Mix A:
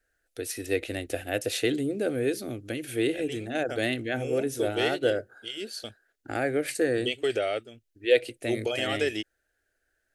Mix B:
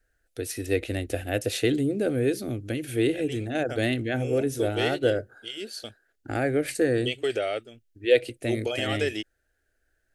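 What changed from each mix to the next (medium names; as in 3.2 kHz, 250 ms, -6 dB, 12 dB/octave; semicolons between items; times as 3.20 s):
first voice: add bass shelf 210 Hz +10 dB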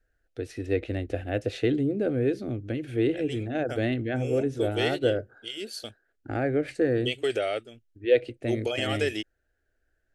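first voice: add tape spacing loss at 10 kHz 22 dB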